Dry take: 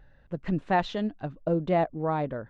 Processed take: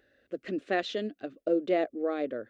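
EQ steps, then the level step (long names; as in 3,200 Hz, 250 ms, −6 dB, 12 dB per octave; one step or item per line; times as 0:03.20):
high-pass filter 210 Hz 12 dB per octave
phaser with its sweep stopped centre 380 Hz, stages 4
+2.5 dB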